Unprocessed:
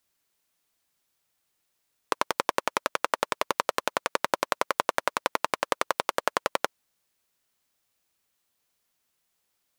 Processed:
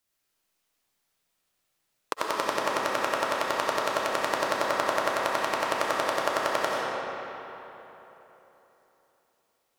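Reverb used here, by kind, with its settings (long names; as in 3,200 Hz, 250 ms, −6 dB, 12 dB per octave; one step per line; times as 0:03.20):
comb and all-pass reverb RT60 3.6 s, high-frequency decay 0.65×, pre-delay 45 ms, DRR −4.5 dB
level −4 dB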